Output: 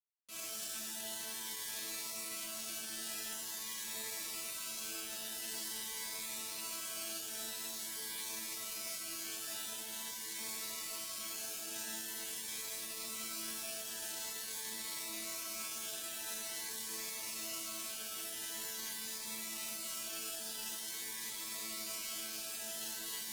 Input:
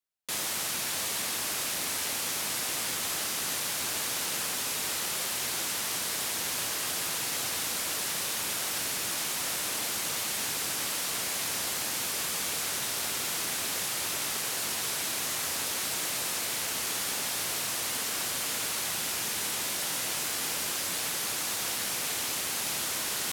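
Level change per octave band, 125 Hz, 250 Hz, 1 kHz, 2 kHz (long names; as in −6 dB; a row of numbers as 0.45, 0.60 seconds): −18.5, −9.5, −14.0, −13.0 decibels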